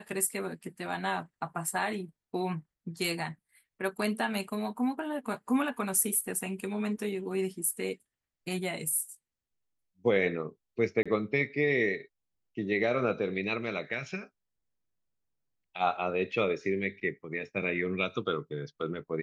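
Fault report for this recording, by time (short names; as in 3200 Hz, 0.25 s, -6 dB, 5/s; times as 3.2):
11.03–11.06 gap 26 ms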